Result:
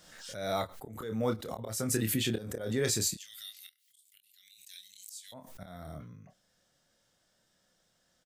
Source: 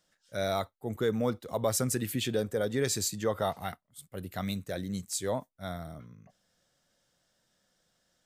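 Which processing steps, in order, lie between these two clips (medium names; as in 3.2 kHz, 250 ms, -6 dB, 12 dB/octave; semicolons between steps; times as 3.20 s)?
3.14–5.32 s: inverse Chebyshev high-pass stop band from 1.1 kHz, stop band 50 dB; slow attack 299 ms; doubling 27 ms -6.5 dB; swell ahead of each attack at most 58 dB/s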